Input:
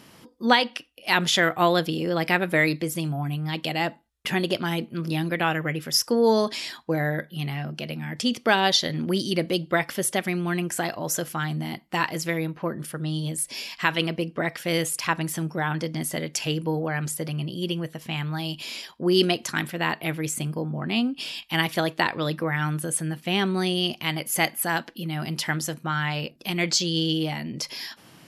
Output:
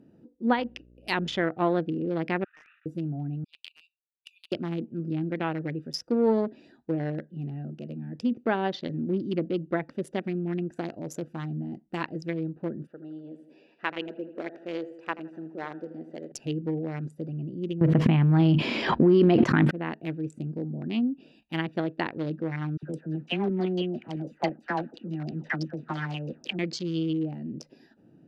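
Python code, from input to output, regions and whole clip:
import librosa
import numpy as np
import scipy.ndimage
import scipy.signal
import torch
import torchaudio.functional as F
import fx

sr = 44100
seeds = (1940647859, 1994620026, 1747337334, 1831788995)

y = fx.high_shelf(x, sr, hz=3900.0, db=6.0, at=(0.57, 1.42), fade=0.02)
y = fx.dmg_buzz(y, sr, base_hz=60.0, harmonics=10, level_db=-51.0, tilt_db=-6, odd_only=False, at=(0.57, 1.42), fade=0.02)
y = fx.chain(y, sr, fx.cvsd(bps=16000),
    fx.cheby1_highpass(hz=1200.0, order=6),
    fx.sustainer(db_per_s=71.0), at=(2.44, 2.86))
y = fx.chain(y, sr, fx.brickwall_highpass(low_hz=2300.0),
    fx.high_shelf(hz=9900.0, db=-6.0), at=(3.44, 4.52))
y = fx.chain(y, sr, fx.bandpass_edges(low_hz=410.0, high_hz=3400.0),
    fx.echo_feedback(ms=81, feedback_pct=57, wet_db=-10.5), at=(12.87, 16.32))
y = fx.chain(y, sr, fx.peak_eq(hz=120.0, db=5.5, octaves=1.8),
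    fx.env_flatten(amount_pct=100), at=(17.81, 19.71))
y = fx.chain(y, sr, fx.crossing_spikes(level_db=-22.0),
    fx.filter_lfo_lowpass(shape='saw_down', hz=6.0, low_hz=520.0, high_hz=6500.0, q=2.8),
    fx.dispersion(late='lows', ms=59.0, hz=880.0), at=(22.77, 26.59))
y = fx.wiener(y, sr, points=41)
y = fx.peak_eq(y, sr, hz=290.0, db=7.5, octaves=1.5)
y = fx.env_lowpass_down(y, sr, base_hz=1800.0, full_db=-15.5)
y = F.gain(torch.from_numpy(y), -7.0).numpy()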